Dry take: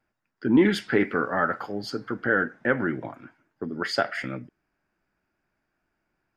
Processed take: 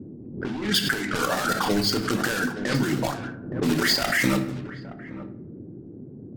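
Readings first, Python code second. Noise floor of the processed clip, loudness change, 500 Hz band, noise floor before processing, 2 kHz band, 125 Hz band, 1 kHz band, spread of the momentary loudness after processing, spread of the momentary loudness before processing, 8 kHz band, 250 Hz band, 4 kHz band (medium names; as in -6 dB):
-42 dBFS, +1.5 dB, -1.5 dB, -79 dBFS, +1.5 dB, +6.0 dB, +2.0 dB, 20 LU, 15 LU, +16.5 dB, +0.5 dB, +11.5 dB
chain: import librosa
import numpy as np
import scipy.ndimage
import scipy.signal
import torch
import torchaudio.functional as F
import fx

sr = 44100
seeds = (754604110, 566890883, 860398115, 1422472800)

p1 = fx.block_float(x, sr, bits=3)
p2 = np.repeat(scipy.signal.resample_poly(p1, 1, 2), 2)[:len(p1)]
p3 = fx.low_shelf(p2, sr, hz=130.0, db=3.0)
p4 = fx.fold_sine(p3, sr, drive_db=7, ceiling_db=-7.0)
p5 = fx.dereverb_blind(p4, sr, rt60_s=0.76)
p6 = fx.over_compress(p5, sr, threshold_db=-21.0, ratio=-1.0)
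p7 = fx.high_shelf(p6, sr, hz=3800.0, db=4.5)
p8 = p7 + fx.echo_single(p7, sr, ms=869, db=-15.0, dry=0)
p9 = fx.room_shoebox(p8, sr, seeds[0], volume_m3=240.0, walls='mixed', distance_m=0.5)
p10 = fx.env_lowpass(p9, sr, base_hz=550.0, full_db=-17.0)
p11 = fx.dmg_noise_band(p10, sr, seeds[1], low_hz=94.0, high_hz=360.0, level_db=-36.0)
p12 = fx.pre_swell(p11, sr, db_per_s=76.0)
y = F.gain(torch.from_numpy(p12), -5.0).numpy()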